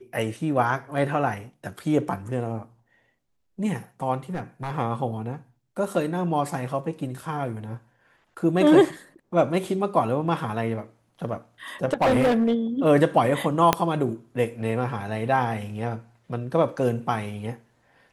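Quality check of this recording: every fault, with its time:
4.34–4.71 s: clipped -24 dBFS
11.93–12.55 s: clipped -16 dBFS
13.73 s: pop -3 dBFS

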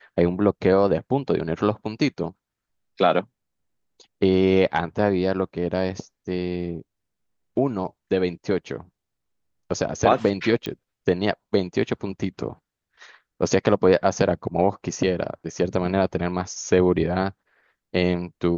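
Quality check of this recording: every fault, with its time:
10.66 s: pop -15 dBFS

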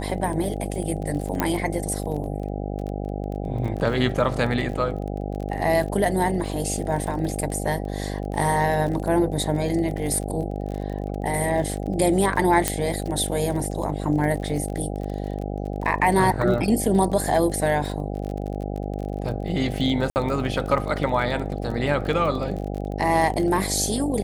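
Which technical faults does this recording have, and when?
buzz 50 Hz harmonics 16 -29 dBFS
crackle 32 per s -30 dBFS
1.40 s: pop -7 dBFS
12.68 s: pop -3 dBFS
20.10–20.16 s: dropout 59 ms

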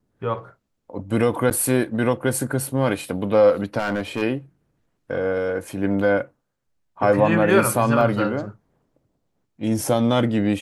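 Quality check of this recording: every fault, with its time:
1.50–1.51 s: dropout 9.8 ms
3.78–4.23 s: clipped -18.5 dBFS
8.01 s: dropout 2.6 ms

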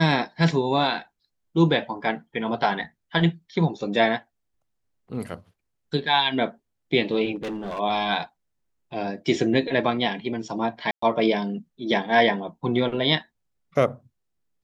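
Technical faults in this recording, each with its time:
7.35–7.80 s: clipped -27.5 dBFS
10.91–11.02 s: dropout 114 ms

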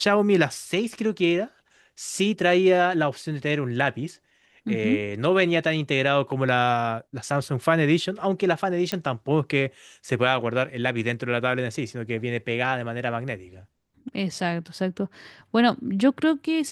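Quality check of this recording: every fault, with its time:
8.92 s: pop -12 dBFS

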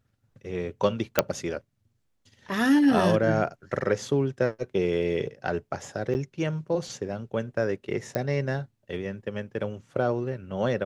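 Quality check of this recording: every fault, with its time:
1.19 s: pop -3 dBFS
6.14–6.15 s: dropout 9.7 ms
8.15 s: pop -15 dBFS

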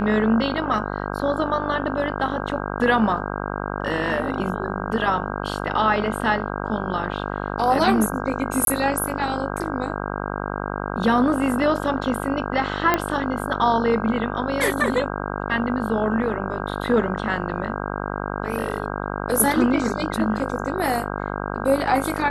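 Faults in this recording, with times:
buzz 50 Hz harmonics 32 -28 dBFS
8.65–8.67 s: dropout 22 ms
12.94 s: pop -5 dBFS

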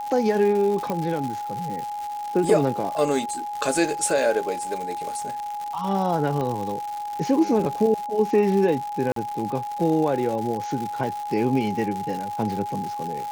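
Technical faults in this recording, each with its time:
crackle 240 per s -29 dBFS
whine 830 Hz -28 dBFS
0.90 s: pop -14 dBFS
6.41 s: pop -17 dBFS
9.12–9.16 s: dropout 43 ms

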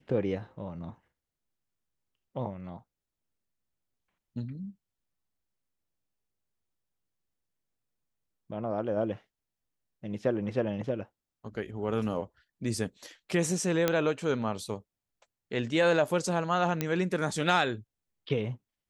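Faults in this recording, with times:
13.88 s: pop -10 dBFS
16.81 s: pop -14 dBFS

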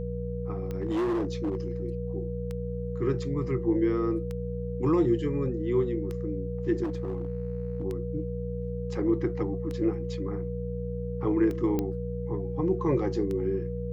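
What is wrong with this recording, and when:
hum 60 Hz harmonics 3 -34 dBFS
tick 33 1/3 rpm -23 dBFS
whine 480 Hz -35 dBFS
0.57–1.72 s: clipped -24.5 dBFS
6.83–7.83 s: clipped -26.5 dBFS
11.79 s: pop -16 dBFS

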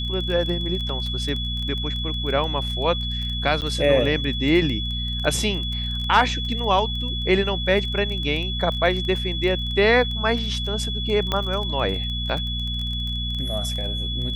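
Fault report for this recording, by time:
crackle 18 per s -27 dBFS
hum 60 Hz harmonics 4 -28 dBFS
whine 3.4 kHz -28 dBFS
0.89 s: dropout 2.9 ms
3.61–3.62 s: dropout 8.9 ms
11.32 s: pop -9 dBFS

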